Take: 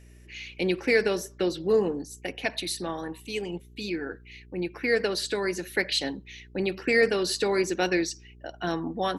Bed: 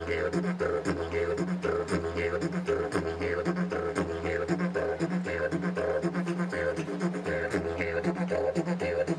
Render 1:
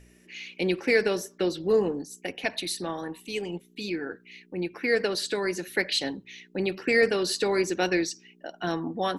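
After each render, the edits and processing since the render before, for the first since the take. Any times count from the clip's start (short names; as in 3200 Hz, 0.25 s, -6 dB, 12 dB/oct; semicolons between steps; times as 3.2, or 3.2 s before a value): de-hum 60 Hz, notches 2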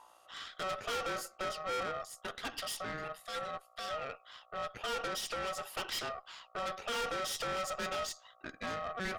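ring modulator 940 Hz; tube stage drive 33 dB, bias 0.5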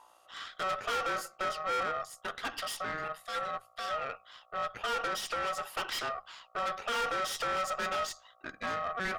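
notches 50/100/150/200 Hz; dynamic EQ 1300 Hz, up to +6 dB, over -50 dBFS, Q 0.77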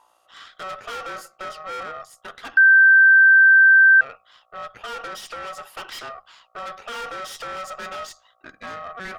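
2.57–4.01 bleep 1560 Hz -8.5 dBFS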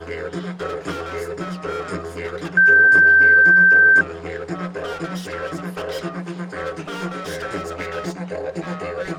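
add bed +1 dB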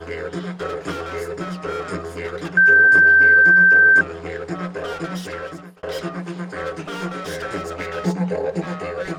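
5.27–5.83 fade out; 8.04–8.65 small resonant body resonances 200/450/840 Hz, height 12 dB -> 8 dB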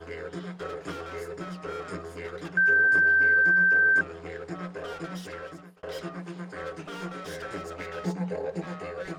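gain -9 dB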